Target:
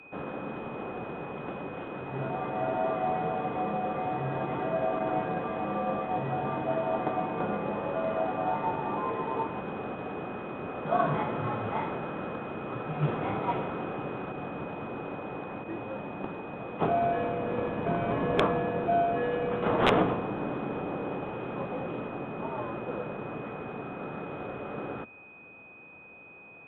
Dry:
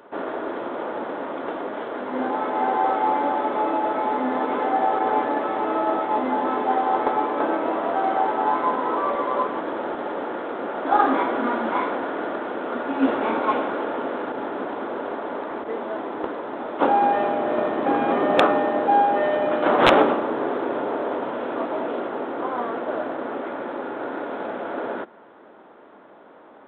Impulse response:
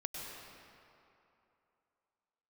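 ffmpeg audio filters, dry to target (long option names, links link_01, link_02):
-af "afreqshift=-120,aeval=exprs='val(0)+0.00891*sin(2*PI*2500*n/s)':channel_layout=same,volume=-8dB"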